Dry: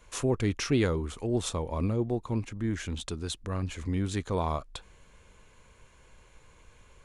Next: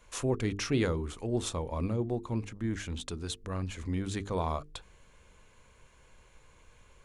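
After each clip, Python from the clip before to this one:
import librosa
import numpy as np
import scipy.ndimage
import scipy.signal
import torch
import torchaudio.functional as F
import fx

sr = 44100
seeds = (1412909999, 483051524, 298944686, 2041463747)

y = fx.hum_notches(x, sr, base_hz=50, count=9)
y = y * 10.0 ** (-2.0 / 20.0)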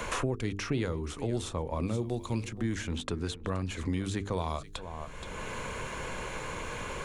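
y = x + 10.0 ** (-20.0 / 20.0) * np.pad(x, (int(473 * sr / 1000.0), 0))[:len(x)]
y = fx.band_squash(y, sr, depth_pct=100)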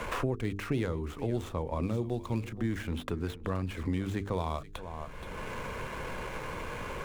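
y = scipy.signal.medfilt(x, 9)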